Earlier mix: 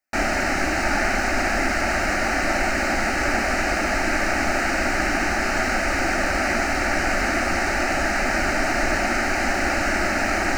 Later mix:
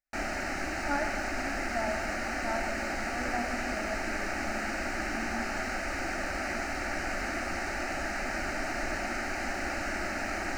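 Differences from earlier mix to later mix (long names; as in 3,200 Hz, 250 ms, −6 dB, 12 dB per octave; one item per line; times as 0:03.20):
speech: add spectral tilt −4 dB per octave
background −11.5 dB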